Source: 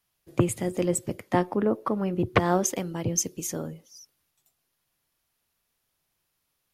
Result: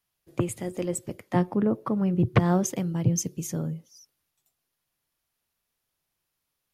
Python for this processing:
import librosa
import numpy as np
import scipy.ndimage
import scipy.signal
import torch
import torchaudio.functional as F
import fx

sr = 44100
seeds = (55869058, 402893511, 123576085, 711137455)

y = fx.peak_eq(x, sr, hz=140.0, db=13.5, octaves=1.2, at=(1.35, 3.89))
y = y * librosa.db_to_amplitude(-4.0)